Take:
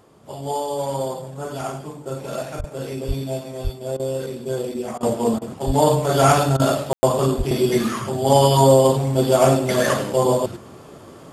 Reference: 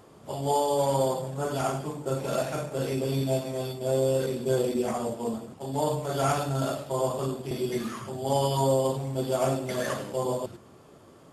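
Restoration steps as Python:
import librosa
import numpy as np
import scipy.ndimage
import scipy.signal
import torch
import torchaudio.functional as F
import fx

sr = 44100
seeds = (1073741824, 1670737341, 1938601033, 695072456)

y = fx.fix_deplosive(x, sr, at_s=(2.58, 3.07, 3.63, 5.66, 7.37))
y = fx.fix_ambience(y, sr, seeds[0], print_start_s=0.0, print_end_s=0.5, start_s=6.93, end_s=7.03)
y = fx.fix_interpolate(y, sr, at_s=(2.61, 3.97, 4.98, 5.39, 6.57), length_ms=25.0)
y = fx.gain(y, sr, db=fx.steps((0.0, 0.0), (5.03, -11.0)))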